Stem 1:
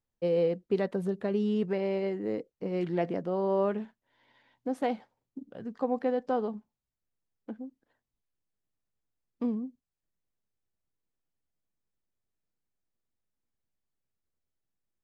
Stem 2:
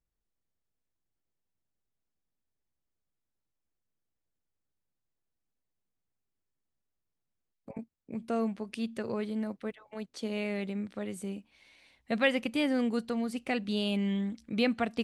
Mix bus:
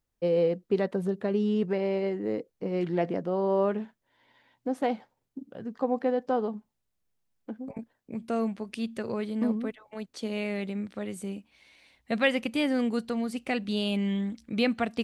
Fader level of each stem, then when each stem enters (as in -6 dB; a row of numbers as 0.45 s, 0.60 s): +2.0 dB, +2.0 dB; 0.00 s, 0.00 s